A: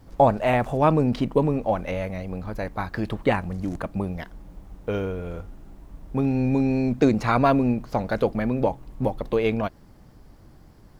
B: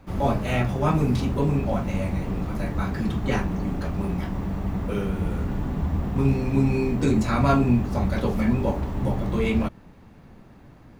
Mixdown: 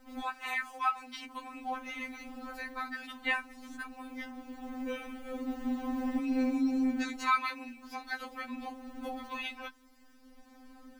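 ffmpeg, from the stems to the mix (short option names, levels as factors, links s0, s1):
-filter_complex "[0:a]highpass=f=1100:w=0.5412,highpass=f=1100:w=1.3066,volume=0.944,asplit=2[s0][s1];[1:a]alimiter=limit=0.141:level=0:latency=1:release=30,dynaudnorm=f=910:g=3:m=2.82,volume=-1,volume=0.376[s2];[s1]apad=whole_len=484951[s3];[s2][s3]sidechaincompress=threshold=0.00562:ratio=10:attack=33:release=1300[s4];[s0][s4]amix=inputs=2:normalize=0,afftfilt=real='re*3.46*eq(mod(b,12),0)':imag='im*3.46*eq(mod(b,12),0)':win_size=2048:overlap=0.75"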